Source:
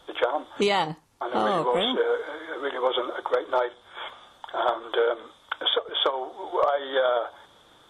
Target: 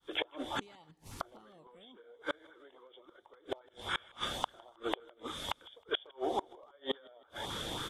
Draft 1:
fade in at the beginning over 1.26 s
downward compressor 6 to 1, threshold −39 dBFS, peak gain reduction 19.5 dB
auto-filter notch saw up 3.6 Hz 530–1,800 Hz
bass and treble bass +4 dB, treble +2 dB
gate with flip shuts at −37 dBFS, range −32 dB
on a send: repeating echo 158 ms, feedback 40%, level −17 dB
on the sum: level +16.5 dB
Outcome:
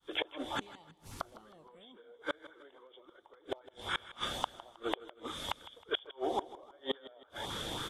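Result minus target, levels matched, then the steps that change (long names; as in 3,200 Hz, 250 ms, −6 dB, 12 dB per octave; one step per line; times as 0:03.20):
echo-to-direct +9 dB
change: repeating echo 158 ms, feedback 40%, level −26 dB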